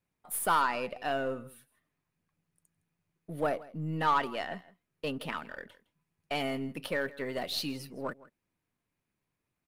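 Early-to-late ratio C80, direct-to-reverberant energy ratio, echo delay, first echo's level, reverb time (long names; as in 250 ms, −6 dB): no reverb audible, no reverb audible, 162 ms, −20.0 dB, no reverb audible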